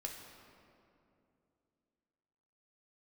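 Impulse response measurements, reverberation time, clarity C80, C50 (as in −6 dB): 2.7 s, 5.0 dB, 4.0 dB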